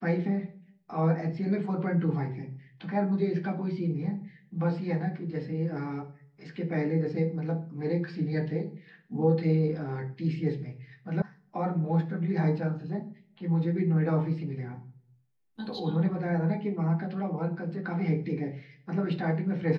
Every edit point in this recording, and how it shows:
0:11.22: cut off before it has died away

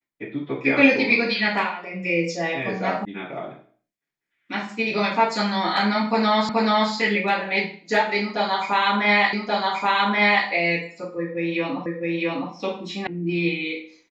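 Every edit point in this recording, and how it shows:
0:03.05: cut off before it has died away
0:06.49: the same again, the last 0.43 s
0:09.33: the same again, the last 1.13 s
0:11.86: the same again, the last 0.66 s
0:13.07: cut off before it has died away

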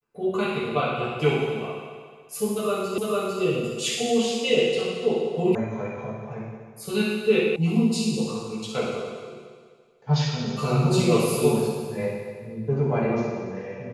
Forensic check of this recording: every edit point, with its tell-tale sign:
0:02.98: the same again, the last 0.45 s
0:05.55: cut off before it has died away
0:07.56: cut off before it has died away

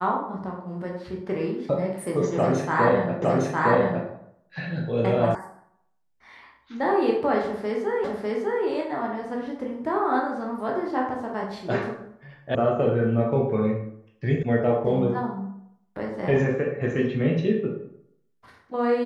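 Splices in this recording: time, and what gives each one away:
0:03.22: the same again, the last 0.86 s
0:05.35: cut off before it has died away
0:08.04: the same again, the last 0.6 s
0:12.55: cut off before it has died away
0:14.43: cut off before it has died away

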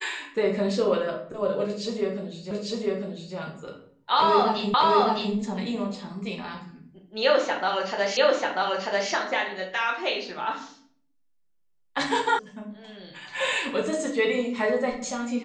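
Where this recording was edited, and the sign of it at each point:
0:02.51: the same again, the last 0.85 s
0:04.74: the same again, the last 0.61 s
0:08.17: the same again, the last 0.94 s
0:12.39: cut off before it has died away

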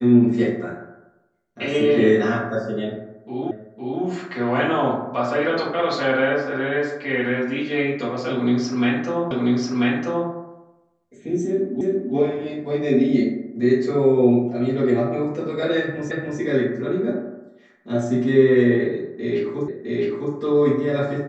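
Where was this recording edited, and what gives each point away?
0:03.51: the same again, the last 0.51 s
0:09.31: the same again, the last 0.99 s
0:11.81: the same again, the last 0.34 s
0:16.11: the same again, the last 0.29 s
0:19.68: the same again, the last 0.66 s

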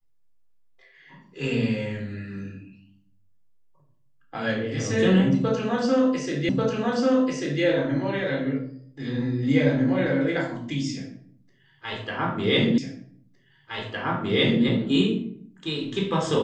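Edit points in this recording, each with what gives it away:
0:06.49: the same again, the last 1.14 s
0:12.78: the same again, the last 1.86 s

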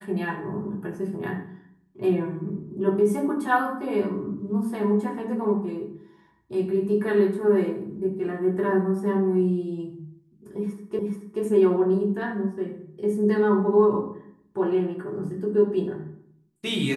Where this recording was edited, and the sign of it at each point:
0:10.99: the same again, the last 0.43 s

